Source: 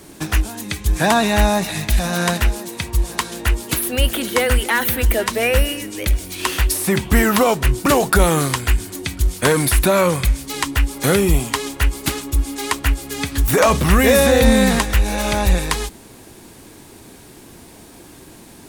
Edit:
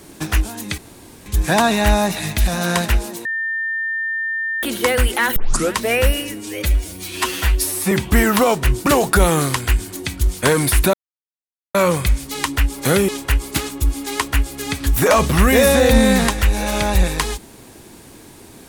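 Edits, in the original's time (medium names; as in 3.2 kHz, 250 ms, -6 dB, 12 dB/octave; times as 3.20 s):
0.78 s: insert room tone 0.48 s
2.77–4.15 s: bleep 1.8 kHz -19.5 dBFS
4.88 s: tape start 0.37 s
5.86–6.91 s: stretch 1.5×
9.93 s: insert silence 0.81 s
11.27–11.60 s: delete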